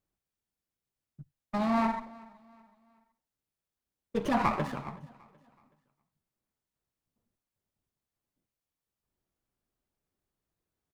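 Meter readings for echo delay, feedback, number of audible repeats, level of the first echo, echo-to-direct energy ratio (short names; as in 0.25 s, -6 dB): 0.375 s, 39%, 2, -23.0 dB, -22.5 dB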